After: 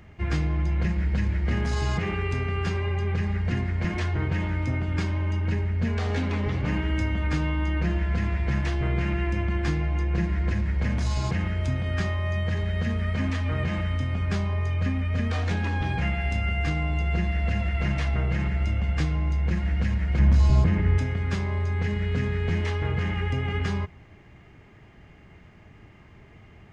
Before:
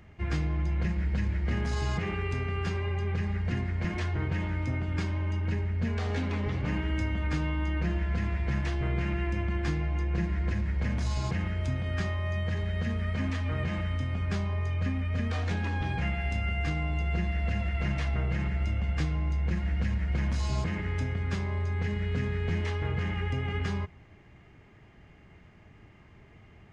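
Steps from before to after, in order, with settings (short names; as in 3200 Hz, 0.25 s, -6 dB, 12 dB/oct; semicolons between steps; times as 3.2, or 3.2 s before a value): 20.19–20.98 tilt -2 dB/oct; gain +4 dB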